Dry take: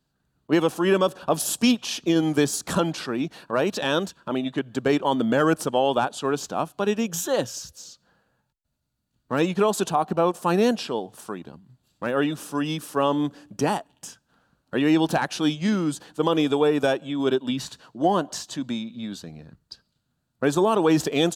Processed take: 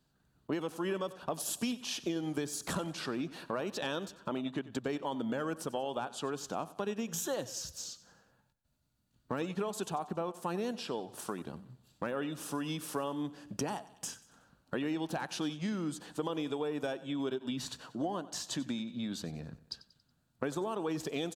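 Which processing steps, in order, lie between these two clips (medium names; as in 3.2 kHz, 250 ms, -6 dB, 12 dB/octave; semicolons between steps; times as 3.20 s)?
compression 5:1, threshold -34 dBFS, peak gain reduction 17 dB; on a send: feedback delay 93 ms, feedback 46%, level -17.5 dB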